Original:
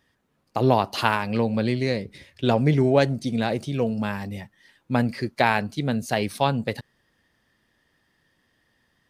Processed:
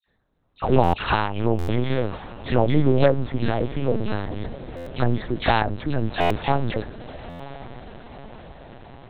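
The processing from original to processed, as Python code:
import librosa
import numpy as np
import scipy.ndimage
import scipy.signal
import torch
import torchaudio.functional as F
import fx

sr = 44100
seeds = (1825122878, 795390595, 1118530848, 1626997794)

p1 = fx.env_lowpass(x, sr, base_hz=2200.0, full_db=-17.5)
p2 = (np.kron(p1[::8], np.eye(8)[0]) * 8)[:len(p1)]
p3 = fx.high_shelf(p2, sr, hz=2100.0, db=-9.0)
p4 = fx.dispersion(p3, sr, late='lows', ms=86.0, hz=1800.0)
p5 = p4 + fx.echo_diffused(p4, sr, ms=983, feedback_pct=60, wet_db=-15.5, dry=0)
p6 = fx.lpc_vocoder(p5, sr, seeds[0], excitation='pitch_kept', order=8)
p7 = fx.buffer_glitch(p6, sr, at_s=(0.83, 1.58, 4.76, 6.2, 7.29), block=512, repeats=8)
y = p7 * 10.0 ** (2.5 / 20.0)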